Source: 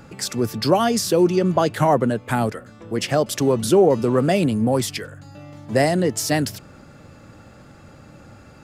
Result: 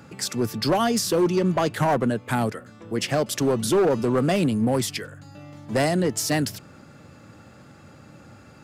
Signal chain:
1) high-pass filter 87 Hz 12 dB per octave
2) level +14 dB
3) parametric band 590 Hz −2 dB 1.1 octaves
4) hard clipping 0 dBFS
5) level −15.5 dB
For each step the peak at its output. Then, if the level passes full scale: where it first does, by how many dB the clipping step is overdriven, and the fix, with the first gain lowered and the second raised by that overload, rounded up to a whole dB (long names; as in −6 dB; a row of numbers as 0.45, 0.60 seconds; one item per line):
−4.0, +10.0, +9.0, 0.0, −15.5 dBFS
step 2, 9.0 dB
step 2 +5 dB, step 5 −6.5 dB